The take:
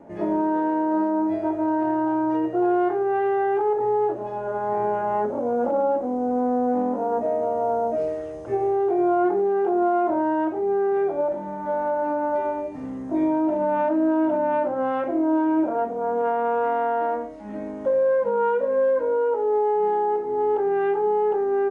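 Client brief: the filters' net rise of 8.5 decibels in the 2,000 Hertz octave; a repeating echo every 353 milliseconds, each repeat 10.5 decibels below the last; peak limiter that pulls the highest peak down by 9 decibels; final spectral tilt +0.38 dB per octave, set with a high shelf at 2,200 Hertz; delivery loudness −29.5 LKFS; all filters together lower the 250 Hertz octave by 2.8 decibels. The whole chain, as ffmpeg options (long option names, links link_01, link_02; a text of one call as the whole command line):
ffmpeg -i in.wav -af "equalizer=frequency=250:width_type=o:gain=-4.5,equalizer=frequency=2000:width_type=o:gain=8.5,highshelf=frequency=2200:gain=8.5,alimiter=limit=-20.5dB:level=0:latency=1,aecho=1:1:353|706|1059:0.299|0.0896|0.0269,volume=-2dB" out.wav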